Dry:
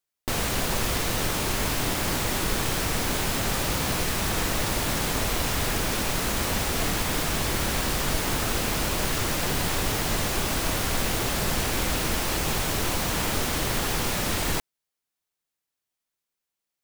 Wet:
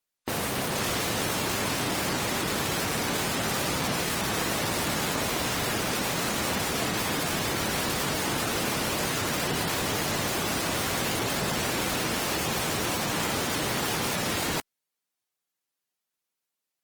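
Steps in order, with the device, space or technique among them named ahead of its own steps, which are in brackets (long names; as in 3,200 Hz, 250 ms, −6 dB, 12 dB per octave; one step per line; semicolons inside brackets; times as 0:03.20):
noise-suppressed video call (high-pass filter 120 Hz 12 dB per octave; gate on every frequency bin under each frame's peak −20 dB strong; Opus 24 kbit/s 48,000 Hz)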